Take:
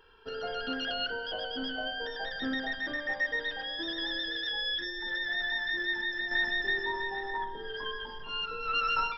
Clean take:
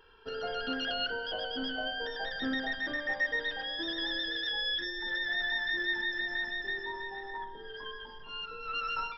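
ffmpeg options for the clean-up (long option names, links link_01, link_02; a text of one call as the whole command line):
ffmpeg -i in.wav -af "asetnsamples=nb_out_samples=441:pad=0,asendcmd='6.31 volume volume -5.5dB',volume=0dB" out.wav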